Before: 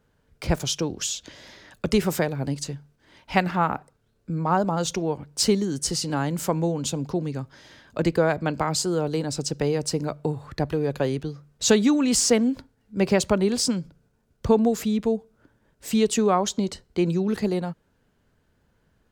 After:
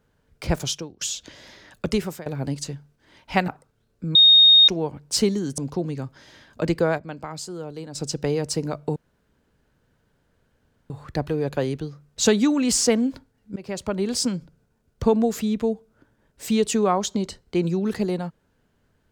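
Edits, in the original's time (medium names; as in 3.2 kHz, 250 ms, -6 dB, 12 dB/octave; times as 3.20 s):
0.70–1.01 s: fade out quadratic, to -19.5 dB
1.86–2.26 s: fade out, to -21.5 dB
3.48–3.74 s: delete
4.41–4.94 s: bleep 3.71 kHz -9 dBFS
5.84–6.95 s: delete
8.01–9.66 s: dip -9.5 dB, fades 0.34 s logarithmic
10.33 s: insert room tone 1.94 s
12.99–13.66 s: fade in, from -23 dB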